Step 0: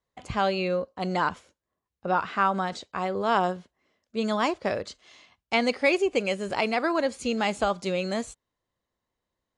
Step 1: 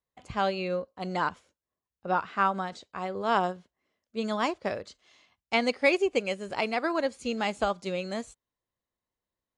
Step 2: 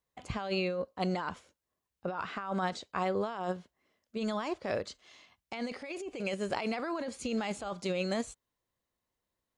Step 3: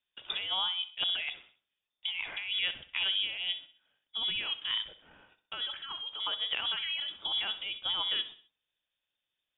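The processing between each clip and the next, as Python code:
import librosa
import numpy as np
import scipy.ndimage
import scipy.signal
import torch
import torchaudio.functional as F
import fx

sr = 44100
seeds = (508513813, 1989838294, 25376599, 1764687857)

y1 = fx.upward_expand(x, sr, threshold_db=-33.0, expansion=1.5)
y2 = fx.over_compress(y1, sr, threshold_db=-33.0, ratio=-1.0)
y2 = y2 * 10.0 ** (-1.0 / 20.0)
y3 = fx.echo_feedback(y2, sr, ms=64, feedback_pct=43, wet_db=-14.5)
y3 = fx.freq_invert(y3, sr, carrier_hz=3600)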